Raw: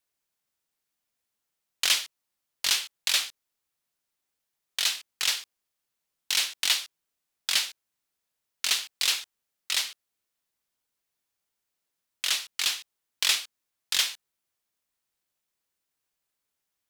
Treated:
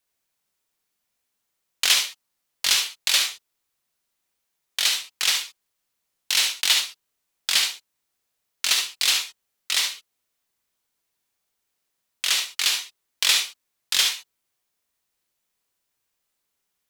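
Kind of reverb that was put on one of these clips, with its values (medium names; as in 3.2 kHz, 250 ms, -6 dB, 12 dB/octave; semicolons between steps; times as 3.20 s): gated-style reverb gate 90 ms rising, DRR 3.5 dB; trim +3.5 dB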